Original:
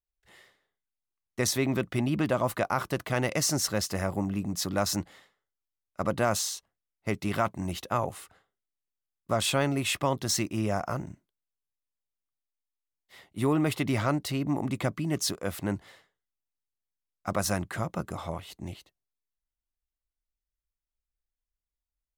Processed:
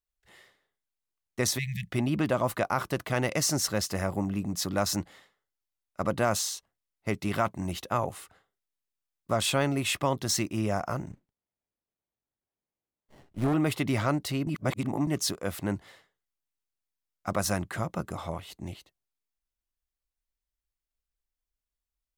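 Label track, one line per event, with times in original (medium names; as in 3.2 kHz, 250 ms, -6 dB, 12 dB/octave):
1.580000	1.900000	spectral selection erased 200–1700 Hz
11.110000	13.540000	sliding maximum over 33 samples
14.470000	15.070000	reverse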